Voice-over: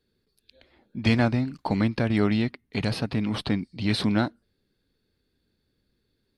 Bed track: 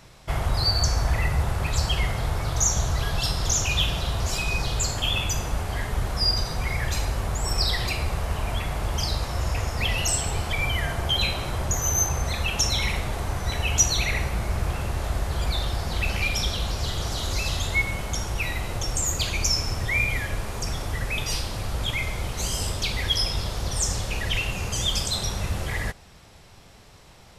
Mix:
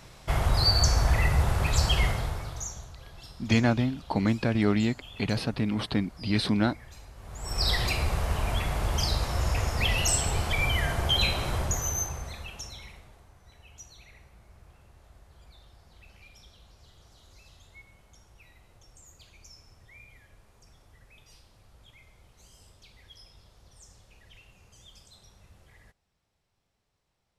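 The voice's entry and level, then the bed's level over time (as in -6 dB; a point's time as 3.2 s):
2.45 s, -1.5 dB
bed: 2.07 s 0 dB
2.94 s -22 dB
7.14 s -22 dB
7.69 s -1 dB
11.56 s -1 dB
13.32 s -28.5 dB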